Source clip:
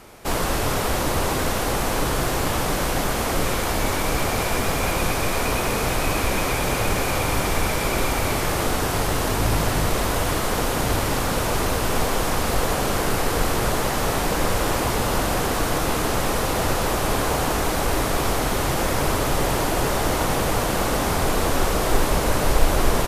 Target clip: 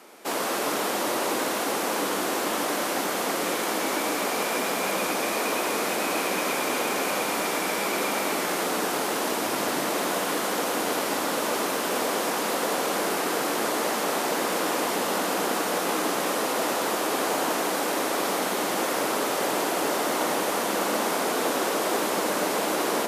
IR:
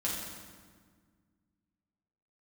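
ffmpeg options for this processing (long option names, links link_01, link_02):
-filter_complex "[0:a]highpass=frequency=240:width=0.5412,highpass=frequency=240:width=1.3066,asplit=2[link_01][link_02];[1:a]atrim=start_sample=2205,adelay=114[link_03];[link_02][link_03]afir=irnorm=-1:irlink=0,volume=-12dB[link_04];[link_01][link_04]amix=inputs=2:normalize=0,volume=-3dB"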